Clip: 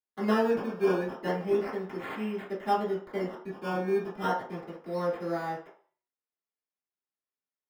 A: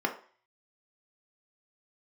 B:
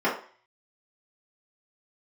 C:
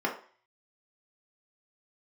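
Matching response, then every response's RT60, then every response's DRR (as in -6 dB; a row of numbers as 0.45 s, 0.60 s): B; 0.45 s, 0.45 s, 0.45 s; 2.0 dB, -9.5 dB, -2.0 dB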